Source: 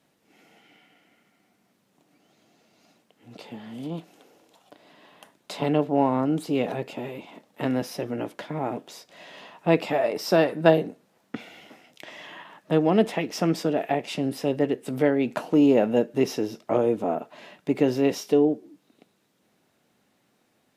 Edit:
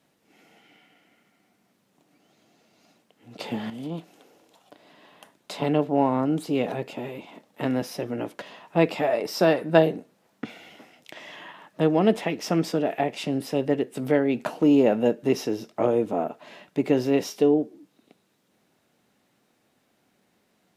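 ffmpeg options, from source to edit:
ffmpeg -i in.wav -filter_complex "[0:a]asplit=4[link_01][link_02][link_03][link_04];[link_01]atrim=end=3.402[link_05];[link_02]atrim=start=3.398:end=3.702,asetpts=PTS-STARTPTS,volume=9.5dB[link_06];[link_03]atrim=start=3.698:end=8.422[link_07];[link_04]atrim=start=9.328[link_08];[link_05][link_06]acrossfade=duration=0.004:curve1=hsin:curve2=hsin[link_09];[link_09][link_07]acrossfade=duration=0.004:curve1=hsin:curve2=hsin[link_10];[link_10][link_08]acrossfade=duration=0.004:curve1=hsin:curve2=hsin" out.wav

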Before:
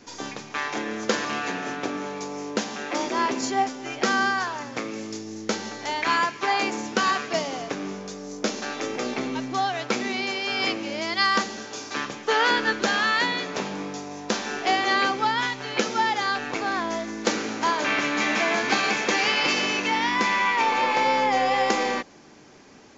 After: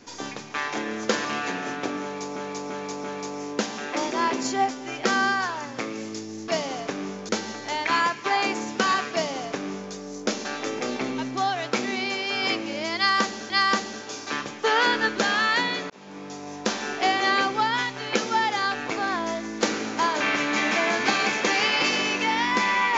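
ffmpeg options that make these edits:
ffmpeg -i in.wav -filter_complex "[0:a]asplit=8[link_01][link_02][link_03][link_04][link_05][link_06][link_07][link_08];[link_01]atrim=end=2.362[link_09];[link_02]atrim=start=2.018:end=2.362[link_10];[link_03]atrim=start=2.018:end=2.362[link_11];[link_04]atrim=start=2.018:end=5.462[link_12];[link_05]atrim=start=7.298:end=8.112[link_13];[link_06]atrim=start=5.458:end=11.672[link_14];[link_07]atrim=start=11.138:end=13.54,asetpts=PTS-STARTPTS,afade=type=out:start_time=2.398:duration=0.004:curve=hsin[link_15];[link_08]atrim=start=13.54,asetpts=PTS-STARTPTS,afade=type=in:duration=0.62[link_16];[link_09][link_10]acrossfade=duration=0.004:curve1=hsin:curve2=hsin[link_17];[link_17][link_11]acrossfade=duration=0.004:curve1=hsin:curve2=hsin[link_18];[link_18][link_12]acrossfade=duration=0.004:curve1=hsin:curve2=hsin[link_19];[link_19][link_13]acrossfade=duration=0.004:curve1=hsin:curve2=hsin[link_20];[link_20][link_14]acrossfade=duration=0.004:curve1=hsin:curve2=hsin[link_21];[link_15][link_16]concat=n=2:v=0:a=1[link_22];[link_21][link_22]acrossfade=duration=0.004:curve1=hsin:curve2=hsin" out.wav

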